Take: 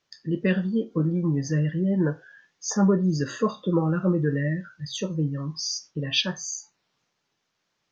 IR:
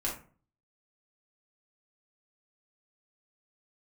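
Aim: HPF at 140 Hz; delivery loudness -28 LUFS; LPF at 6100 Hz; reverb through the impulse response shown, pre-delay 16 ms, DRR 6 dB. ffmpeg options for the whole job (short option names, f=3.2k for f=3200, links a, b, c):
-filter_complex "[0:a]highpass=140,lowpass=6.1k,asplit=2[a][b];[1:a]atrim=start_sample=2205,adelay=16[c];[b][c]afir=irnorm=-1:irlink=0,volume=-10.5dB[d];[a][d]amix=inputs=2:normalize=0,volume=-2dB"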